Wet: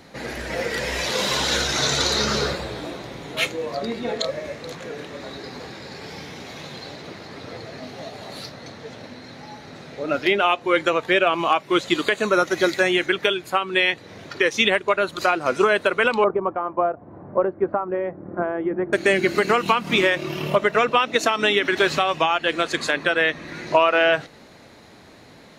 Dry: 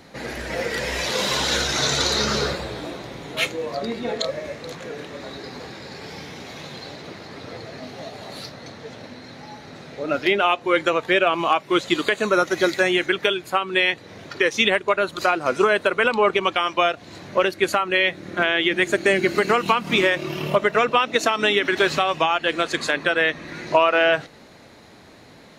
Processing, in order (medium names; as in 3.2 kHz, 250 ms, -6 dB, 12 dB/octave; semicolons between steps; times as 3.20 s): 16.24–18.93 s: low-pass 1.1 kHz 24 dB/octave